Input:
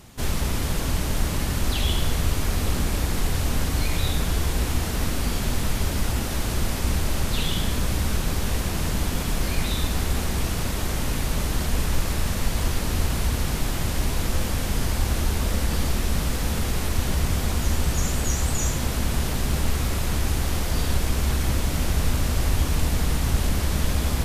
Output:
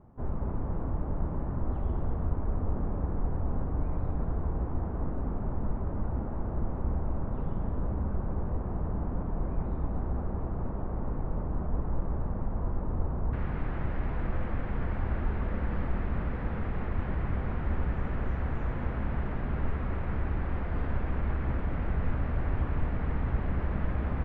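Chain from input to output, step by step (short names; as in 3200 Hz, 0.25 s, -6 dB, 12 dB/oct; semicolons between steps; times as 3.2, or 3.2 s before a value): LPF 1100 Hz 24 dB/oct, from 13.33 s 1900 Hz; echo 0.235 s -8 dB; gain -7 dB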